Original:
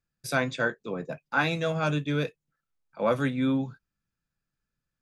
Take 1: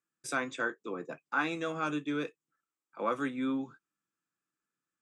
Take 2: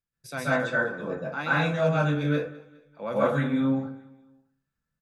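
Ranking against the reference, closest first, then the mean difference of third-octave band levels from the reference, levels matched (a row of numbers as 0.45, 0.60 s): 1, 2; 3.5, 8.0 dB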